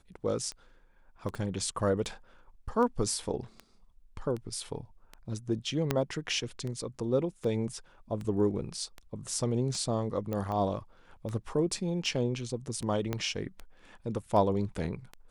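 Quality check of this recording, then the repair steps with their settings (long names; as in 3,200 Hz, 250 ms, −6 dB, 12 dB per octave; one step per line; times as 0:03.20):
scratch tick 78 rpm −26 dBFS
0:01.35: drop-out 3.3 ms
0:05.91: click −12 dBFS
0:10.33: click −22 dBFS
0:13.13: click −17 dBFS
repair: click removal
repair the gap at 0:01.35, 3.3 ms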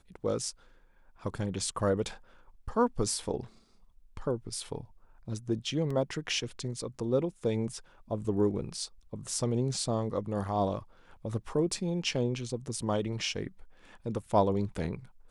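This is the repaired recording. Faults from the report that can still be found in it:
0:05.91: click
0:10.33: click
0:13.13: click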